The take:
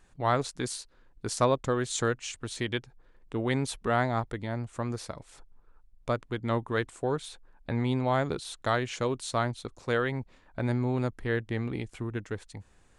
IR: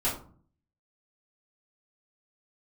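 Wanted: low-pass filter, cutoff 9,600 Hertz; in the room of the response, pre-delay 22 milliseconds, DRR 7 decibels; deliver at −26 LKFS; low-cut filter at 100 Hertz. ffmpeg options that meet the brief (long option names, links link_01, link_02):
-filter_complex "[0:a]highpass=100,lowpass=9600,asplit=2[link_01][link_02];[1:a]atrim=start_sample=2205,adelay=22[link_03];[link_02][link_03]afir=irnorm=-1:irlink=0,volume=-15.5dB[link_04];[link_01][link_04]amix=inputs=2:normalize=0,volume=4dB"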